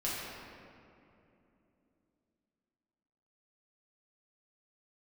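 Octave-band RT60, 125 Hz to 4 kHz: 3.6, 4.1, 3.2, 2.5, 2.2, 1.4 seconds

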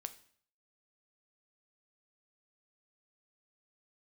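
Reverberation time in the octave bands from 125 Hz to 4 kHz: 0.70, 0.55, 0.55, 0.55, 0.55, 0.55 seconds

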